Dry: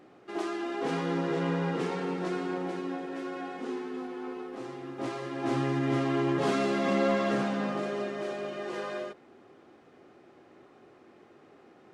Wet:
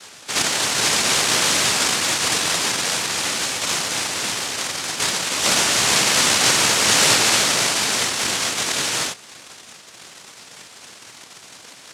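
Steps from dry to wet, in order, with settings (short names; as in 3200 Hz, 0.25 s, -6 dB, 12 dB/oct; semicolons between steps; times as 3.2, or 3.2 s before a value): dynamic EQ 880 Hz, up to +7 dB, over -50 dBFS, Q 2.9; in parallel at +2 dB: compressor, threshold -34 dBFS, peak gain reduction 12 dB; on the sum: noise vocoder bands 1; gain +6.5 dB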